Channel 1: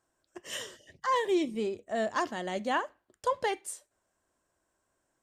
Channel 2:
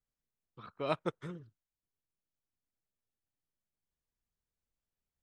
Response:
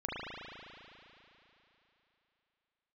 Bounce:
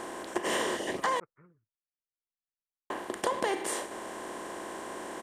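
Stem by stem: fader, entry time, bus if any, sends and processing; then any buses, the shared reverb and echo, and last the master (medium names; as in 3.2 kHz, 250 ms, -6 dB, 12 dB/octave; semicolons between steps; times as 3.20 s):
+2.0 dB, 0.00 s, muted 1.20–2.90 s, no send, spectral levelling over time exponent 0.4
-3.0 dB, 0.15 s, no send, elliptic low-pass 2.4 kHz; peaking EQ 1.2 kHz +5 dB 0.93 oct; auto duck -17 dB, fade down 1.85 s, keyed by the first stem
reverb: none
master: compression 6:1, threshold -26 dBFS, peak gain reduction 8 dB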